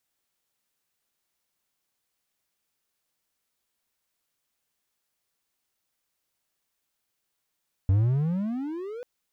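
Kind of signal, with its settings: gliding synth tone triangle, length 1.14 s, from 92 Hz, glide +29.5 st, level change -18 dB, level -15 dB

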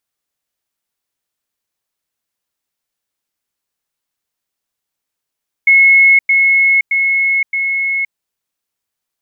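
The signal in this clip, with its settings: level ladder 2180 Hz -4.5 dBFS, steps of -3 dB, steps 4, 0.52 s 0.10 s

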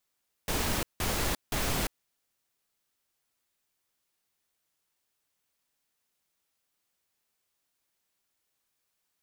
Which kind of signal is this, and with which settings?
noise bursts pink, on 0.35 s, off 0.17 s, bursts 3, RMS -29.5 dBFS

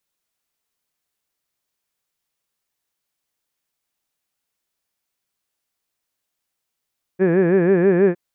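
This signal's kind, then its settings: formant vowel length 0.96 s, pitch 177 Hz, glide +1 st, vibrato 6.2 Hz, vibrato depth 1.4 st, F1 420 Hz, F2 1700 Hz, F3 2400 Hz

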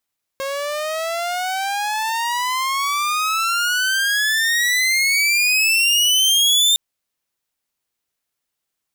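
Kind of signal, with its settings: gliding synth tone saw, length 6.36 s, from 539 Hz, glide +33 st, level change +11 dB, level -9 dB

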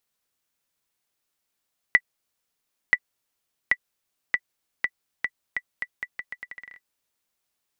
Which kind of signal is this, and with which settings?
bouncing ball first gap 0.98 s, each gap 0.8, 1970 Hz, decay 54 ms -4 dBFS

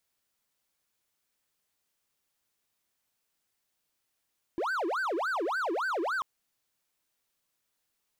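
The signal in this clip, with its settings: siren wail 324–1560 Hz 3.5/s triangle -26 dBFS 1.64 s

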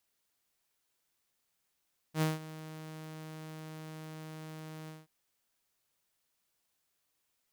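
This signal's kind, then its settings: ADSR saw 157 Hz, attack 76 ms, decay 0.17 s, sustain -17.5 dB, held 2.74 s, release 0.189 s -23.5 dBFS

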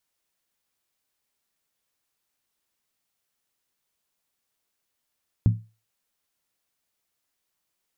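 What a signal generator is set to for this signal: skin hit, lowest mode 110 Hz, decay 0.30 s, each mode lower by 8 dB, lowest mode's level -11.5 dB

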